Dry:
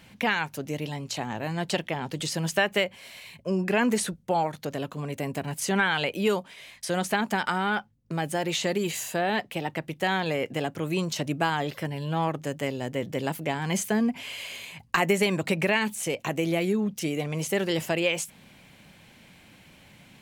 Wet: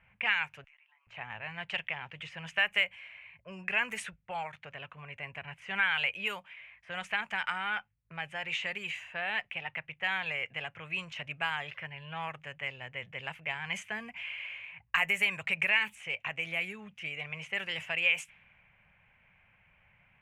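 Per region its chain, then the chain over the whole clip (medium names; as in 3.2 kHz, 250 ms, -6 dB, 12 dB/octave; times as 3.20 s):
0.64–1.07 s: steep high-pass 940 Hz + compression 12:1, threshold -53 dBFS
whole clip: resonant high shelf 3.3 kHz -9.5 dB, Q 3; level-controlled noise filter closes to 1.2 kHz, open at -19 dBFS; amplifier tone stack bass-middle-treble 10-0-10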